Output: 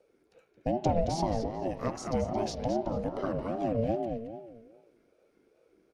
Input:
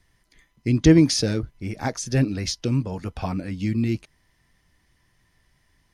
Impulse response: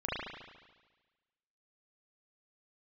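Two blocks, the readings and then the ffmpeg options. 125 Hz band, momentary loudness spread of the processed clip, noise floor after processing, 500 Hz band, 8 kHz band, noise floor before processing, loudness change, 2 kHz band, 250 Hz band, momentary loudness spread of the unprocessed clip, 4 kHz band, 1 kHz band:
-13.0 dB, 9 LU, -70 dBFS, -2.0 dB, -15.5 dB, -67 dBFS, -9.0 dB, -14.5 dB, -11.5 dB, 15 LU, -15.5 dB, +3.5 dB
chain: -filter_complex "[0:a]tiltshelf=f=1.1k:g=5.5,acompressor=threshold=-19dB:ratio=3,asplit=2[a][b];[b]adelay=221,lowpass=f=4.1k:p=1,volume=-6dB,asplit=2[c][d];[d]adelay=221,lowpass=f=4.1k:p=1,volume=0.33,asplit=2[e][f];[f]adelay=221,lowpass=f=4.1k:p=1,volume=0.33,asplit=2[g][h];[h]adelay=221,lowpass=f=4.1k:p=1,volume=0.33[i];[a][c][e][g][i]amix=inputs=5:normalize=0,asplit=2[j][k];[1:a]atrim=start_sample=2205[l];[k][l]afir=irnorm=-1:irlink=0,volume=-16dB[m];[j][m]amix=inputs=2:normalize=0,aeval=exprs='val(0)*sin(2*PI*420*n/s+420*0.2/2.5*sin(2*PI*2.5*n/s))':c=same,volume=-6.5dB"

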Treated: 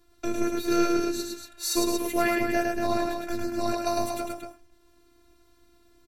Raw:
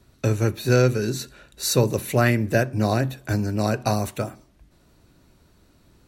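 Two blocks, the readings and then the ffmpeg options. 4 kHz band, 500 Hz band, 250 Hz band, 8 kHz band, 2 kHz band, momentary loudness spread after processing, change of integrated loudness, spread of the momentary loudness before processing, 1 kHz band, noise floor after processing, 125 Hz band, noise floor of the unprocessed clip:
-2.5 dB, -4.5 dB, -2.0 dB, -2.5 dB, -4.5 dB, 9 LU, -4.5 dB, 10 LU, -0.5 dB, -61 dBFS, -22.0 dB, -59 dBFS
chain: -af "aecho=1:1:105|233.2:0.708|0.447,afftfilt=real='hypot(re,im)*cos(PI*b)':imag='0':win_size=512:overlap=0.75,volume=-1.5dB"

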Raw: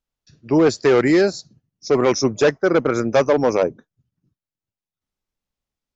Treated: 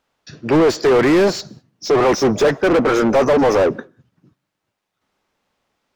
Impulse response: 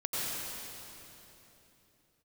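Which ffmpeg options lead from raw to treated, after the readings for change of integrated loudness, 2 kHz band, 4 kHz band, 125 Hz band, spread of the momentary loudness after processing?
+2.5 dB, +2.5 dB, +3.0 dB, +1.5 dB, 11 LU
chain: -filter_complex "[0:a]asplit=2[a][b];[b]highpass=f=720:p=1,volume=32dB,asoftclip=type=tanh:threshold=-7dB[c];[a][c]amix=inputs=2:normalize=0,lowpass=f=1.2k:p=1,volume=-6dB,asplit=2[d][e];[1:a]atrim=start_sample=2205,afade=t=out:st=0.26:d=0.01,atrim=end_sample=11907[f];[e][f]afir=irnorm=-1:irlink=0,volume=-30.5dB[g];[d][g]amix=inputs=2:normalize=0"

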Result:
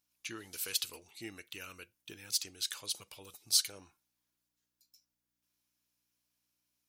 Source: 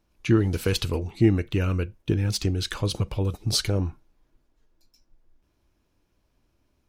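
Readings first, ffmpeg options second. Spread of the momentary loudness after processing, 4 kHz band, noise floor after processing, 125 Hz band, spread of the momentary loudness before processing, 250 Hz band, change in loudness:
22 LU, -4.5 dB, under -85 dBFS, -36.5 dB, 6 LU, -27.5 dB, -9.5 dB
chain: -af "aeval=exprs='val(0)+0.00141*(sin(2*PI*60*n/s)+sin(2*PI*2*60*n/s)/2+sin(2*PI*3*60*n/s)/3+sin(2*PI*4*60*n/s)/4+sin(2*PI*5*60*n/s)/5)':c=same,aderivative"

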